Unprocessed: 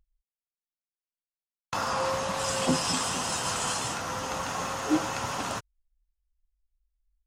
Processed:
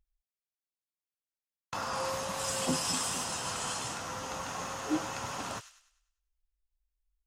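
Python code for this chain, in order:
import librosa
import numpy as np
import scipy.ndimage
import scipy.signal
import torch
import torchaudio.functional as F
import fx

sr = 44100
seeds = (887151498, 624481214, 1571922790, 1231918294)

y = fx.high_shelf(x, sr, hz=9500.0, db=11.5, at=(1.93, 3.24))
y = fx.echo_wet_highpass(y, sr, ms=100, feedback_pct=41, hz=2200.0, wet_db=-9.5)
y = y * 10.0 ** (-6.0 / 20.0)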